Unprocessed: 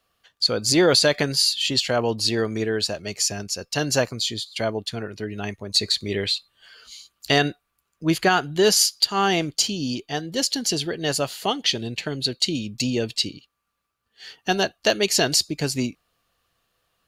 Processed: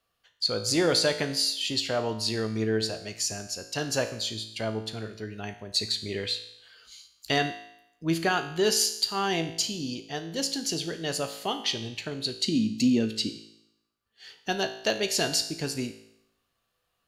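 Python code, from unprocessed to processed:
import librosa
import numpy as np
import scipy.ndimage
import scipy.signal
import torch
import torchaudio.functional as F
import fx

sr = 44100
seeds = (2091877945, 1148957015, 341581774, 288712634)

y = fx.peak_eq(x, sr, hz=240.0, db=13.0, octaves=0.67, at=(12.38, 13.3))
y = fx.comb_fb(y, sr, f0_hz=55.0, decay_s=0.79, harmonics='all', damping=0.0, mix_pct=70)
y = F.gain(torch.from_numpy(y), 1.0).numpy()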